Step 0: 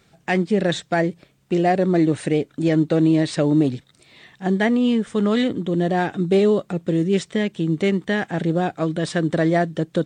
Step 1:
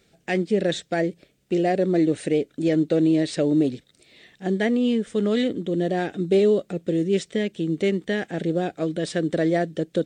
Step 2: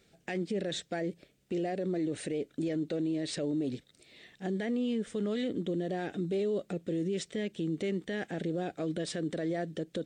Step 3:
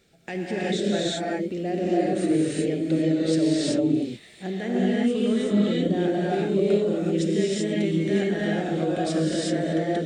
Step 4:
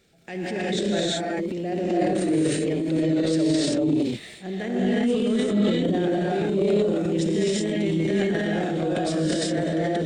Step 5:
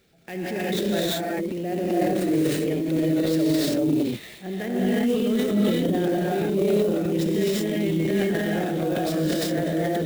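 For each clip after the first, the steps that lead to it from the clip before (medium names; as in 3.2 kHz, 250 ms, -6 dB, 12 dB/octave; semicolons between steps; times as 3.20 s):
graphic EQ 125/500/1000 Hz -7/+4/-11 dB; trim -2 dB
peak limiter -21 dBFS, peak gain reduction 11 dB; trim -4 dB
gated-style reverb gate 410 ms rising, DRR -6 dB; trim +2.5 dB
transient shaper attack -4 dB, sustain +8 dB
sampling jitter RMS 0.021 ms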